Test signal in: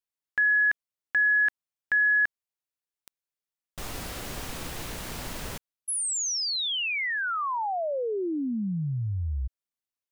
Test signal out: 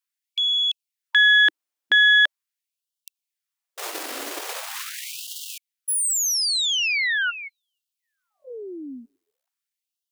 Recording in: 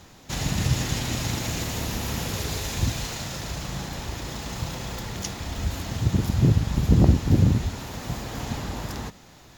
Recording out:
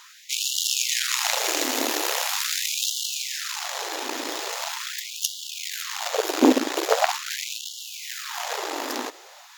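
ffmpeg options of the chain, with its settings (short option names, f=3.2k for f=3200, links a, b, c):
-af "aeval=exprs='0.631*(cos(1*acos(clip(val(0)/0.631,-1,1)))-cos(1*PI/2))+0.224*(cos(6*acos(clip(val(0)/0.631,-1,1)))-cos(6*PI/2))':c=same,bandreject=f=60:t=h:w=6,bandreject=f=120:t=h:w=6,afftfilt=real='re*gte(b*sr/1024,240*pow(2800/240,0.5+0.5*sin(2*PI*0.42*pts/sr)))':imag='im*gte(b*sr/1024,240*pow(2800/240,0.5+0.5*sin(2*PI*0.42*pts/sr)))':win_size=1024:overlap=0.75,volume=6dB"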